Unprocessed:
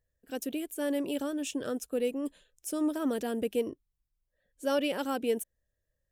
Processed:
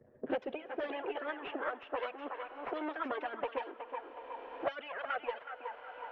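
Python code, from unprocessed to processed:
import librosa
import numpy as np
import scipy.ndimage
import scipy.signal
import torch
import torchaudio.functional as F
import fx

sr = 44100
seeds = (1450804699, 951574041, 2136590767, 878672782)

y = np.where(x < 0.0, 10.0 ** (-12.0 / 20.0) * x, x)
y = fx.filter_sweep_highpass(y, sr, from_hz=190.0, to_hz=750.0, start_s=0.3, end_s=1.21, q=0.8)
y = fx.env_flanger(y, sr, rest_ms=8.3, full_db=-30.0)
y = fx.rider(y, sr, range_db=4, speed_s=0.5)
y = scipy.signal.sosfilt(scipy.signal.butter(4, 2800.0, 'lowpass', fs=sr, output='sos'), y)
y = fx.echo_thinned(y, sr, ms=369, feedback_pct=37, hz=930.0, wet_db=-5.0)
y = fx.env_lowpass(y, sr, base_hz=650.0, full_db=-35.5)
y = fx.dynamic_eq(y, sr, hz=460.0, q=0.86, threshold_db=-48.0, ratio=4.0, max_db=5)
y = fx.hpss(y, sr, part='harmonic', gain_db=-13)
y = fx.rev_schroeder(y, sr, rt60_s=3.2, comb_ms=26, drr_db=19.5)
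y = fx.band_squash(y, sr, depth_pct=100)
y = y * 10.0 ** (11.0 / 20.0)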